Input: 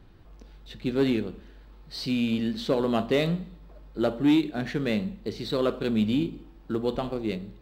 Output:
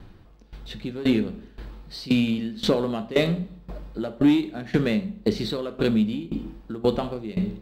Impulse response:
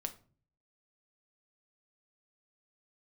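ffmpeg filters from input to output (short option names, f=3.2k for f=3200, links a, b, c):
-filter_complex "[0:a]dynaudnorm=f=420:g=3:m=5dB,asplit=2[a][b];[1:a]atrim=start_sample=2205,asetrate=26019,aresample=44100[c];[b][c]afir=irnorm=-1:irlink=0,volume=-0.5dB[d];[a][d]amix=inputs=2:normalize=0,acompressor=threshold=-23dB:ratio=2,equalizer=f=210:w=6.1:g=4,aeval=exprs='val(0)*pow(10,-18*if(lt(mod(1.9*n/s,1),2*abs(1.9)/1000),1-mod(1.9*n/s,1)/(2*abs(1.9)/1000),(mod(1.9*n/s,1)-2*abs(1.9)/1000)/(1-2*abs(1.9)/1000))/20)':c=same,volume=2.5dB"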